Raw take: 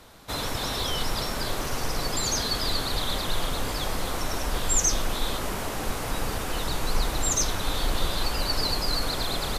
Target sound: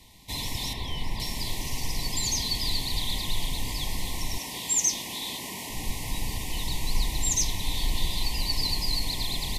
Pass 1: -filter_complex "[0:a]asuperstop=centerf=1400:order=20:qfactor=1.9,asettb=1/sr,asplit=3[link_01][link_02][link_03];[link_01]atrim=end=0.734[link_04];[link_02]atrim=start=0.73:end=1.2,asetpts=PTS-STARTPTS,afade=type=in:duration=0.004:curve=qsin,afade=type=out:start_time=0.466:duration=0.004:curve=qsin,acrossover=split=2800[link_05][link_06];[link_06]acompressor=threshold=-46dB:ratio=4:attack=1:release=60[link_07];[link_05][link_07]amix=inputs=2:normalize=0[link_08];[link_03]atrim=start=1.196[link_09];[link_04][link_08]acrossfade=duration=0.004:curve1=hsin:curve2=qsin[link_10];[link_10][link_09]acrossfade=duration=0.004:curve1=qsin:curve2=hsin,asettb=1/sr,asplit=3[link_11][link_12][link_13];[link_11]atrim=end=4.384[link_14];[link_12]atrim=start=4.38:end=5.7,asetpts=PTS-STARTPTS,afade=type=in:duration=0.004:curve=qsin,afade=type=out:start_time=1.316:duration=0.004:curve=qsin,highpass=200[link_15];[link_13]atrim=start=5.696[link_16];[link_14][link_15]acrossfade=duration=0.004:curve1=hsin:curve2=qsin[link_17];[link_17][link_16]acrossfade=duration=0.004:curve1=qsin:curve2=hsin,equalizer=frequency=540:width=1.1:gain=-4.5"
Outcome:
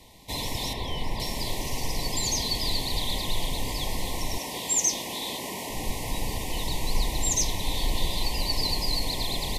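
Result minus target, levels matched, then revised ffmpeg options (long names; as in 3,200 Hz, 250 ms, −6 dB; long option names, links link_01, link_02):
500 Hz band +7.5 dB
-filter_complex "[0:a]asuperstop=centerf=1400:order=20:qfactor=1.9,asettb=1/sr,asplit=3[link_01][link_02][link_03];[link_01]atrim=end=0.734[link_04];[link_02]atrim=start=0.73:end=1.2,asetpts=PTS-STARTPTS,afade=type=in:duration=0.004:curve=qsin,afade=type=out:start_time=0.466:duration=0.004:curve=qsin,acrossover=split=2800[link_05][link_06];[link_06]acompressor=threshold=-46dB:ratio=4:attack=1:release=60[link_07];[link_05][link_07]amix=inputs=2:normalize=0[link_08];[link_03]atrim=start=1.196[link_09];[link_04][link_08]acrossfade=duration=0.004:curve1=hsin:curve2=qsin[link_10];[link_10][link_09]acrossfade=duration=0.004:curve1=qsin:curve2=hsin,asettb=1/sr,asplit=3[link_11][link_12][link_13];[link_11]atrim=end=4.384[link_14];[link_12]atrim=start=4.38:end=5.7,asetpts=PTS-STARTPTS,afade=type=in:duration=0.004:curve=qsin,afade=type=out:start_time=1.316:duration=0.004:curve=qsin,highpass=200[link_15];[link_13]atrim=start=5.696[link_16];[link_14][link_15]acrossfade=duration=0.004:curve1=hsin:curve2=qsin[link_17];[link_17][link_16]acrossfade=duration=0.004:curve1=qsin:curve2=hsin,equalizer=frequency=540:width=1.1:gain=-14.5"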